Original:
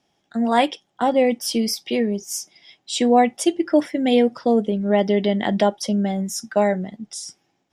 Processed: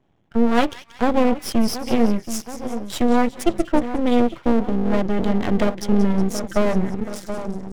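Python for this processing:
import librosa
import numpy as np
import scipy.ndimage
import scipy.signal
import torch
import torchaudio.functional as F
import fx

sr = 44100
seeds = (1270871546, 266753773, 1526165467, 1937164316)

p1 = fx.wiener(x, sr, points=9)
p2 = scipy.signal.sosfilt(scipy.signal.butter(2, 49.0, 'highpass', fs=sr, output='sos'), p1)
p3 = fx.low_shelf(p2, sr, hz=260.0, db=10.0)
p4 = p3 + fx.echo_split(p3, sr, split_hz=1300.0, low_ms=727, high_ms=183, feedback_pct=52, wet_db=-12.5, dry=0)
p5 = fx.rider(p4, sr, range_db=4, speed_s=0.5)
p6 = fx.peak_eq(p5, sr, hz=88.0, db=9.5, octaves=1.4)
y = np.maximum(p6, 0.0)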